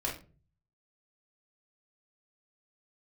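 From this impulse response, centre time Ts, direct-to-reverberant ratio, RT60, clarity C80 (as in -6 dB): 26 ms, -3.5 dB, 0.35 s, 13.5 dB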